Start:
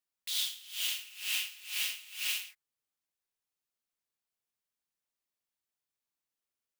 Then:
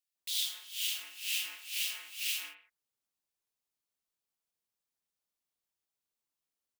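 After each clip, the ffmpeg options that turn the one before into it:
ffmpeg -i in.wav -filter_complex "[0:a]acrossover=split=1900[link_01][link_02];[link_01]adelay=150[link_03];[link_03][link_02]amix=inputs=2:normalize=0" out.wav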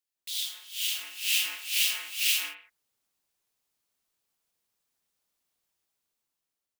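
ffmpeg -i in.wav -af "dynaudnorm=framelen=290:gausssize=7:maxgain=9dB" out.wav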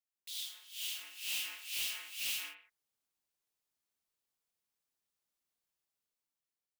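ffmpeg -i in.wav -af "asoftclip=type=tanh:threshold=-22.5dB,volume=-8.5dB" out.wav

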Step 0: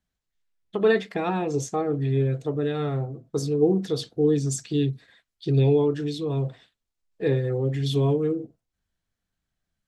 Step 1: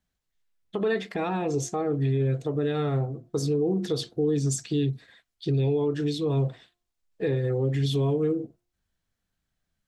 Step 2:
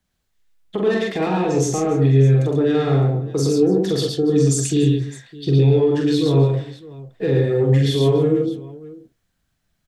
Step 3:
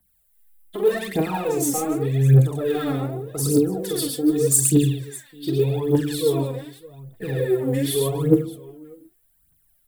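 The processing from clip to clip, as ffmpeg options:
ffmpeg -i in.wav -af "bandreject=frequency=352.3:width_type=h:width=4,bandreject=frequency=704.6:width_type=h:width=4,bandreject=frequency=1056.9:width_type=h:width=4,alimiter=limit=-19.5dB:level=0:latency=1:release=94,volume=1.5dB" out.wav
ffmpeg -i in.wav -filter_complex "[0:a]acrossover=split=340|470|4800[link_01][link_02][link_03][link_04];[link_03]asoftclip=type=tanh:threshold=-30dB[link_05];[link_01][link_02][link_05][link_04]amix=inputs=4:normalize=0,aecho=1:1:44|112|136|288|610:0.668|0.668|0.447|0.112|0.126,volume=6dB" out.wav
ffmpeg -i in.wav -af "aphaser=in_gain=1:out_gain=1:delay=4.1:decay=0.74:speed=0.84:type=triangular,aexciter=amount=11.8:drive=3.5:freq=8600,volume=-7dB" out.wav

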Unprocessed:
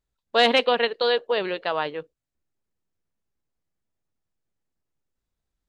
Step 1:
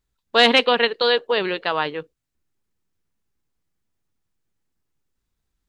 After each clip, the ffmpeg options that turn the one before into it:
ffmpeg -i in.wav -af "equalizer=frequency=610:width=2:gain=-6,volume=5.5dB" out.wav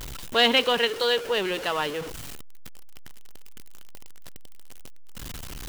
ffmpeg -i in.wav -af "aeval=exprs='val(0)+0.5*0.0708*sgn(val(0))':channel_layout=same,equalizer=frequency=3000:width=7.6:gain=5.5,volume=-7dB" out.wav

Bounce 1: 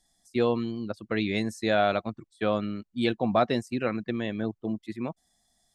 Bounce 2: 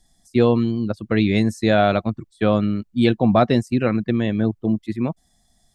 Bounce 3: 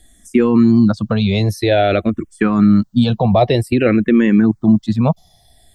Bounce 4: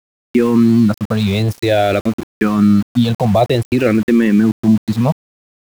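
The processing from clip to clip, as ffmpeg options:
ffmpeg -i in.wav -af "lowshelf=frequency=240:gain=11,volume=5dB" out.wav
ffmpeg -i in.wav -filter_complex "[0:a]alimiter=level_in=14.5dB:limit=-1dB:release=50:level=0:latency=1,asplit=2[link_01][link_02];[link_02]afreqshift=-0.52[link_03];[link_01][link_03]amix=inputs=2:normalize=1" out.wav
ffmpeg -i in.wav -af "aeval=exprs='val(0)*gte(abs(val(0)),0.0562)':channel_layout=same" out.wav

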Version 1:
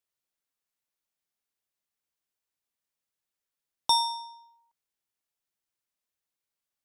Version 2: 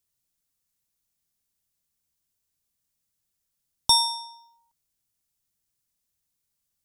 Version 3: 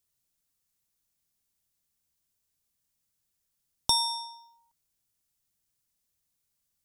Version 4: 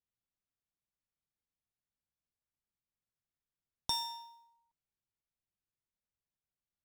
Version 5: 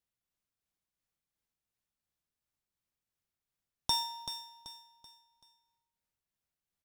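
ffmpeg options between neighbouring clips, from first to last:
ffmpeg -i in.wav -af "bass=frequency=250:gain=15,treble=frequency=4000:gain=10" out.wav
ffmpeg -i in.wav -af "acompressor=threshold=-26dB:ratio=2" out.wav
ffmpeg -i in.wav -af "adynamicsmooth=sensitivity=5:basefreq=2900,acrusher=bits=5:mode=log:mix=0:aa=0.000001,volume=-9dB" out.wav
ffmpeg -i in.wav -filter_complex "[0:a]tremolo=f=2.8:d=0.32,asplit=2[link_01][link_02];[link_02]aecho=0:1:383|766|1149|1532:0.316|0.117|0.0433|0.016[link_03];[link_01][link_03]amix=inputs=2:normalize=0,volume=4dB" out.wav

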